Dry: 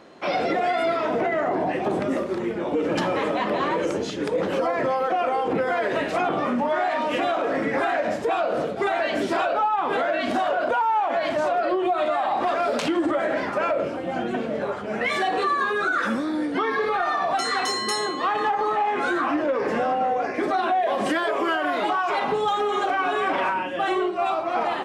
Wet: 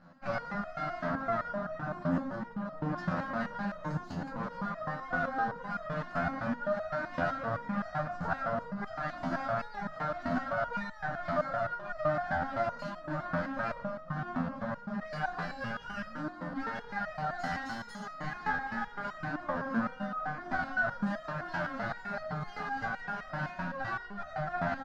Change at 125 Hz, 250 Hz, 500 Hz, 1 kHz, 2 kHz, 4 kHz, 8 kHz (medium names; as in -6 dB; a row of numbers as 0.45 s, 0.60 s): +1.0 dB, -9.5 dB, -14.0 dB, -12.5 dB, -8.5 dB, -19.0 dB, under -20 dB